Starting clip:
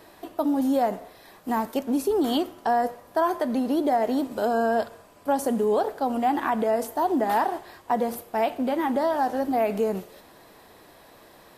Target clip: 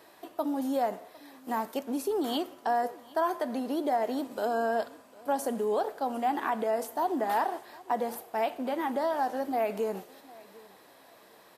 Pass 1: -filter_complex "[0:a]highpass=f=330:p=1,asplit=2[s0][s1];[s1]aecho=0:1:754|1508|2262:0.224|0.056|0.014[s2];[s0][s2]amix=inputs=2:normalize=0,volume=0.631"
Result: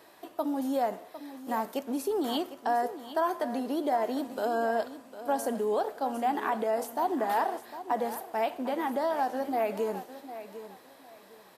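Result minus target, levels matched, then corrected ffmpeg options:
echo-to-direct +9.5 dB
-filter_complex "[0:a]highpass=f=330:p=1,asplit=2[s0][s1];[s1]aecho=0:1:754|1508:0.075|0.0187[s2];[s0][s2]amix=inputs=2:normalize=0,volume=0.631"

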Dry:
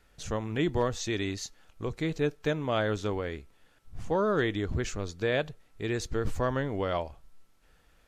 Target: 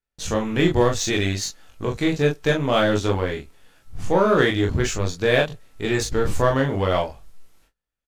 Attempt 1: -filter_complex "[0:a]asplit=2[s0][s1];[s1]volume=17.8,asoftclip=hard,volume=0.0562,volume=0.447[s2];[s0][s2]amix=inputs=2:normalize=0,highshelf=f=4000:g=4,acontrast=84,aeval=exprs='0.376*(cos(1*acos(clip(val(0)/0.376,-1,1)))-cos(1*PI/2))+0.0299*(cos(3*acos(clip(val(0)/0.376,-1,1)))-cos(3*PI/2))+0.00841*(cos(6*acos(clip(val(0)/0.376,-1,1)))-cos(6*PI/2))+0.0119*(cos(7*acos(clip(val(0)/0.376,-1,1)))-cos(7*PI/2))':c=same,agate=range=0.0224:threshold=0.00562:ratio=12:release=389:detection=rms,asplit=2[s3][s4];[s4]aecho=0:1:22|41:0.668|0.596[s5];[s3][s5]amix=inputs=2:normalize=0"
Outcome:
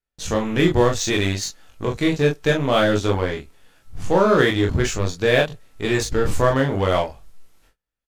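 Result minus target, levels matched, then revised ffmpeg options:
overload inside the chain: distortion -7 dB
-filter_complex "[0:a]asplit=2[s0][s1];[s1]volume=42.2,asoftclip=hard,volume=0.0237,volume=0.447[s2];[s0][s2]amix=inputs=2:normalize=0,highshelf=f=4000:g=4,acontrast=84,aeval=exprs='0.376*(cos(1*acos(clip(val(0)/0.376,-1,1)))-cos(1*PI/2))+0.0299*(cos(3*acos(clip(val(0)/0.376,-1,1)))-cos(3*PI/2))+0.00841*(cos(6*acos(clip(val(0)/0.376,-1,1)))-cos(6*PI/2))+0.0119*(cos(7*acos(clip(val(0)/0.376,-1,1)))-cos(7*PI/2))':c=same,agate=range=0.0224:threshold=0.00562:ratio=12:release=389:detection=rms,asplit=2[s3][s4];[s4]aecho=0:1:22|41:0.668|0.596[s5];[s3][s5]amix=inputs=2:normalize=0"

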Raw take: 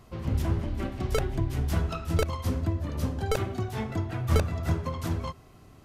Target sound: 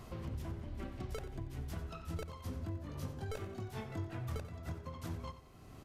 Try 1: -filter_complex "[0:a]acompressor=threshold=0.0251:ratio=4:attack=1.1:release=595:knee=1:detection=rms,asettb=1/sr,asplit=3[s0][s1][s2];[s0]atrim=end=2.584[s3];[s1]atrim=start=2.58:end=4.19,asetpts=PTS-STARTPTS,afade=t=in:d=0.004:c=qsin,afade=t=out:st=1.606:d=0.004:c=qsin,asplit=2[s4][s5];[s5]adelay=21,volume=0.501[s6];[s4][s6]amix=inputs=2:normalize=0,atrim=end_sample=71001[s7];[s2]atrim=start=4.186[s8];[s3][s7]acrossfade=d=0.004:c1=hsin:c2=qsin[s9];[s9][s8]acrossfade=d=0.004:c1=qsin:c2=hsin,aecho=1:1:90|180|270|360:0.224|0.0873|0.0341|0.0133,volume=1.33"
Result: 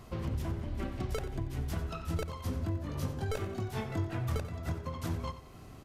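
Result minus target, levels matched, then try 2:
compression: peak gain reduction -7 dB
-filter_complex "[0:a]acompressor=threshold=0.00841:ratio=4:attack=1.1:release=595:knee=1:detection=rms,asettb=1/sr,asplit=3[s0][s1][s2];[s0]atrim=end=2.584[s3];[s1]atrim=start=2.58:end=4.19,asetpts=PTS-STARTPTS,afade=t=in:d=0.004:c=qsin,afade=t=out:st=1.606:d=0.004:c=qsin,asplit=2[s4][s5];[s5]adelay=21,volume=0.501[s6];[s4][s6]amix=inputs=2:normalize=0,atrim=end_sample=71001[s7];[s2]atrim=start=4.186[s8];[s3][s7]acrossfade=d=0.004:c1=hsin:c2=qsin[s9];[s9][s8]acrossfade=d=0.004:c1=qsin:c2=hsin,aecho=1:1:90|180|270|360:0.224|0.0873|0.0341|0.0133,volume=1.33"

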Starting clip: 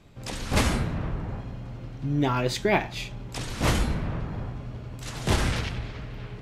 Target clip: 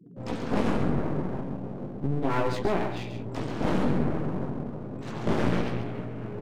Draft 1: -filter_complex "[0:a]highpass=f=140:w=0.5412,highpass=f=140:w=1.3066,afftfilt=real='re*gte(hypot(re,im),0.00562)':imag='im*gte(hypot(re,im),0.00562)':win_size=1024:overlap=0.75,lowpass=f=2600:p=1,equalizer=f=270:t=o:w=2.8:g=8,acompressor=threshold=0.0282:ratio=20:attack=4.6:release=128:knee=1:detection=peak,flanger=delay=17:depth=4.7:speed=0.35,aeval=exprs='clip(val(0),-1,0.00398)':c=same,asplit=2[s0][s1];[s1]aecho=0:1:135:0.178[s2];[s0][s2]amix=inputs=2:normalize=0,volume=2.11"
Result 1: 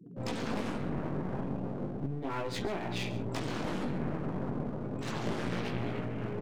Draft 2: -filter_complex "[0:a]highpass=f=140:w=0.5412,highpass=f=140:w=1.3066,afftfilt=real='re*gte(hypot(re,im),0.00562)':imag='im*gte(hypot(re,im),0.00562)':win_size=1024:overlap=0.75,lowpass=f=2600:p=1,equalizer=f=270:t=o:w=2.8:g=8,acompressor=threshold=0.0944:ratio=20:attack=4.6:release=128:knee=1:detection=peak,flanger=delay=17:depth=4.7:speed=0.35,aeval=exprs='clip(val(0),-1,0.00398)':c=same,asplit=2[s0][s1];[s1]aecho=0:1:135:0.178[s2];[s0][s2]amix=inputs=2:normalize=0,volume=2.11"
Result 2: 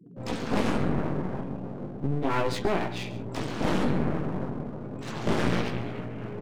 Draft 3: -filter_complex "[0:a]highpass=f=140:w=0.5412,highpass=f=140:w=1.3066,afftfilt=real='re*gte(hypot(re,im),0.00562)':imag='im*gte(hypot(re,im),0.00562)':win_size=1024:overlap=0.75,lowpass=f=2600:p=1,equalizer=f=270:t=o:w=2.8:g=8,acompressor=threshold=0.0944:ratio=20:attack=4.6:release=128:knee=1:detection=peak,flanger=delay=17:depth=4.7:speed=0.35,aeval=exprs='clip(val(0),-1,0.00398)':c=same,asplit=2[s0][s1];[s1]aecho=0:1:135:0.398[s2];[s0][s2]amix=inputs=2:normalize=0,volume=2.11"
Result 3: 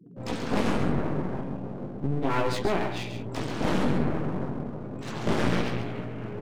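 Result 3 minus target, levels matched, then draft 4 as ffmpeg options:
2 kHz band +2.5 dB
-filter_complex "[0:a]highpass=f=140:w=0.5412,highpass=f=140:w=1.3066,afftfilt=real='re*gte(hypot(re,im),0.00562)':imag='im*gte(hypot(re,im),0.00562)':win_size=1024:overlap=0.75,lowpass=f=1100:p=1,equalizer=f=270:t=o:w=2.8:g=8,acompressor=threshold=0.0944:ratio=20:attack=4.6:release=128:knee=1:detection=peak,flanger=delay=17:depth=4.7:speed=0.35,aeval=exprs='clip(val(0),-1,0.00398)':c=same,asplit=2[s0][s1];[s1]aecho=0:1:135:0.398[s2];[s0][s2]amix=inputs=2:normalize=0,volume=2.11"

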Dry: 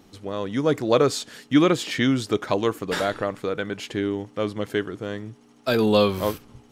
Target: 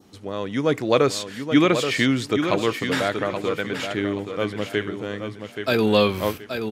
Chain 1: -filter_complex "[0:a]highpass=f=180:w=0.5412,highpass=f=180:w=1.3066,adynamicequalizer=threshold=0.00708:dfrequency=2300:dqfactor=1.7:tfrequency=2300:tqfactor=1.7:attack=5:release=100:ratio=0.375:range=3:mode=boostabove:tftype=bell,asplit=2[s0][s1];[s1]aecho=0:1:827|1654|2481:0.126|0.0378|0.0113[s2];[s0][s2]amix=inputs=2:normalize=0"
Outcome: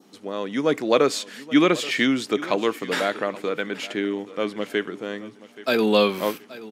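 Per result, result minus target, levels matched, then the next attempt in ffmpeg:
125 Hz band -8.0 dB; echo-to-direct -10.5 dB
-filter_complex "[0:a]highpass=f=54:w=0.5412,highpass=f=54:w=1.3066,adynamicequalizer=threshold=0.00708:dfrequency=2300:dqfactor=1.7:tfrequency=2300:tqfactor=1.7:attack=5:release=100:ratio=0.375:range=3:mode=boostabove:tftype=bell,asplit=2[s0][s1];[s1]aecho=0:1:827|1654|2481:0.126|0.0378|0.0113[s2];[s0][s2]amix=inputs=2:normalize=0"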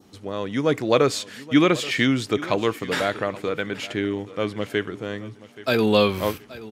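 echo-to-direct -10.5 dB
-filter_complex "[0:a]highpass=f=54:w=0.5412,highpass=f=54:w=1.3066,adynamicequalizer=threshold=0.00708:dfrequency=2300:dqfactor=1.7:tfrequency=2300:tqfactor=1.7:attack=5:release=100:ratio=0.375:range=3:mode=boostabove:tftype=bell,asplit=2[s0][s1];[s1]aecho=0:1:827|1654|2481|3308:0.422|0.127|0.038|0.0114[s2];[s0][s2]amix=inputs=2:normalize=0"

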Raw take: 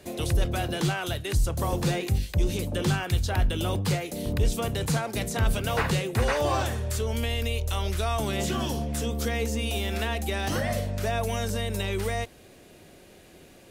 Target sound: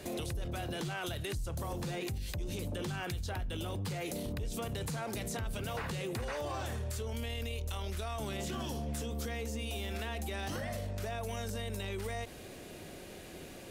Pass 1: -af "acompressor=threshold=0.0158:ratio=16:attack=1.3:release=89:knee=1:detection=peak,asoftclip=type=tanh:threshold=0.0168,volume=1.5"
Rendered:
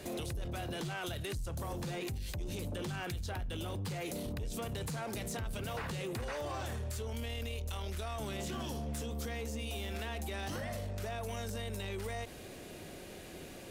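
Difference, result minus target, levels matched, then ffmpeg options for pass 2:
saturation: distortion +11 dB
-af "acompressor=threshold=0.0158:ratio=16:attack=1.3:release=89:knee=1:detection=peak,asoftclip=type=tanh:threshold=0.0355,volume=1.5"

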